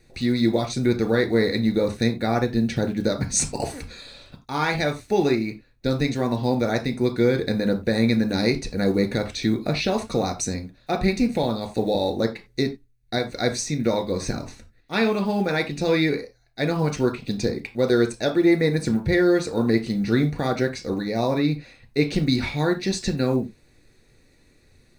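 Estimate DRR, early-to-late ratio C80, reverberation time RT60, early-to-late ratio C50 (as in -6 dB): 4.5 dB, 20.0 dB, not exponential, 14.0 dB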